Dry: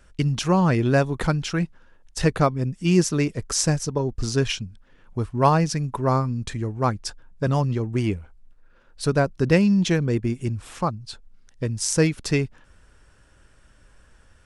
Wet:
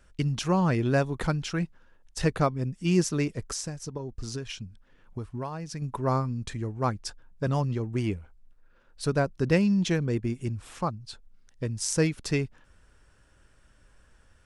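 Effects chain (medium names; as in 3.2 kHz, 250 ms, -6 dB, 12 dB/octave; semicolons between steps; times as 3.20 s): 3.44–5.82 s: compression 16:1, threshold -26 dBFS, peak gain reduction 15 dB; trim -5 dB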